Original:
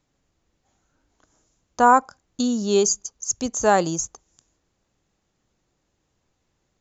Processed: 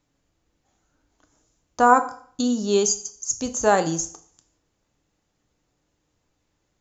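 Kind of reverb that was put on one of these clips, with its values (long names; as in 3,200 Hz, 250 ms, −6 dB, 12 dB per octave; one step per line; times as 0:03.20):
feedback delay network reverb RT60 0.53 s, low-frequency decay 0.95×, high-frequency decay 0.95×, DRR 7.5 dB
level −1 dB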